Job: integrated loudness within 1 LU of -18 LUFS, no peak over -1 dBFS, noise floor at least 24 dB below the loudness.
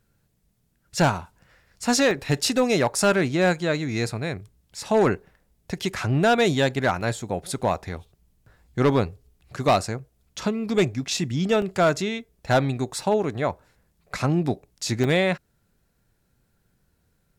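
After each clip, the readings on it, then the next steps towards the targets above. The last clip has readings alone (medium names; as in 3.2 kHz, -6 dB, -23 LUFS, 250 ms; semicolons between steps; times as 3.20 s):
clipped samples 0.8%; clipping level -13.0 dBFS; dropouts 5; longest dropout 1.3 ms; loudness -24.0 LUFS; peak level -13.0 dBFS; loudness target -18.0 LUFS
-> clip repair -13 dBFS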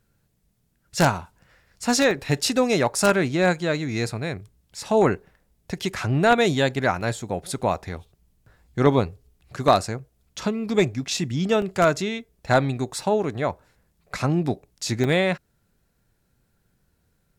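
clipped samples 0.0%; dropouts 5; longest dropout 1.3 ms
-> interpolate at 2.11/7.01/11.62/13.03/15.04 s, 1.3 ms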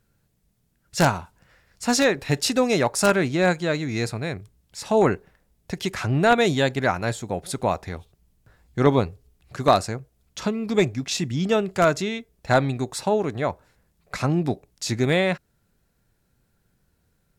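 dropouts 0; loudness -23.0 LUFS; peak level -4.0 dBFS; loudness target -18.0 LUFS
-> trim +5 dB; peak limiter -1 dBFS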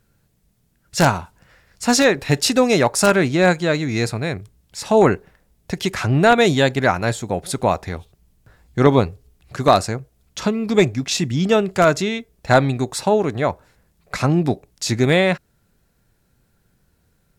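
loudness -18.5 LUFS; peak level -1.0 dBFS; noise floor -64 dBFS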